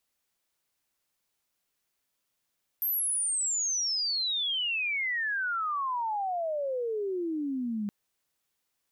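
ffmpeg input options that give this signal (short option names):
-f lavfi -i "aevalsrc='pow(10,(-26-3*t/5.07)/20)*sin(2*PI*13000*5.07/log(200/13000)*(exp(log(200/13000)*t/5.07)-1))':d=5.07:s=44100"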